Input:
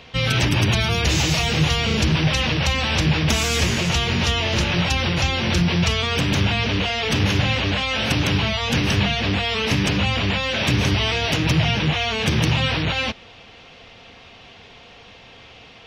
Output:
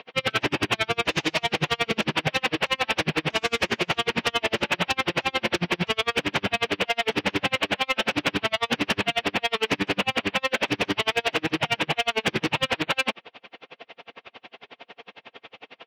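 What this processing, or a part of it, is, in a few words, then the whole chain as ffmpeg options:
helicopter radio: -af "highpass=310,lowpass=2900,aeval=exprs='val(0)*pow(10,-39*(0.5-0.5*cos(2*PI*11*n/s))/20)':c=same,asoftclip=type=hard:threshold=0.0668,volume=2.37"

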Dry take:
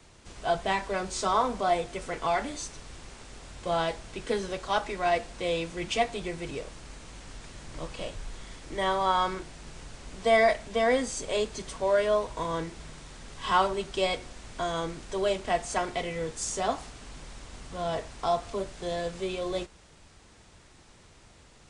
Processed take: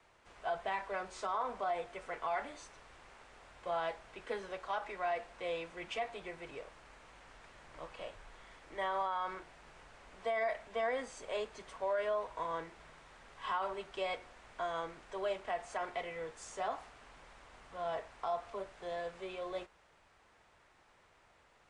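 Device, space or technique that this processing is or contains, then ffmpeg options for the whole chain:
DJ mixer with the lows and highs turned down: -filter_complex "[0:a]acrossover=split=500 2600:gain=0.2 1 0.2[s0][s1][s2];[s0][s1][s2]amix=inputs=3:normalize=0,alimiter=limit=0.075:level=0:latency=1:release=50,volume=0.596"

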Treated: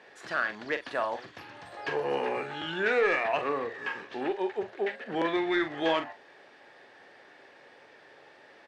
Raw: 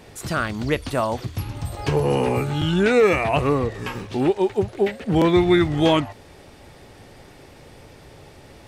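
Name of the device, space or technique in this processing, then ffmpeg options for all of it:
intercom: -filter_complex "[0:a]highpass=450,lowpass=3800,equalizer=f=1700:t=o:w=0.23:g=11.5,asoftclip=type=tanh:threshold=0.335,asplit=2[s0][s1];[s1]adelay=43,volume=0.335[s2];[s0][s2]amix=inputs=2:normalize=0,volume=0.473"

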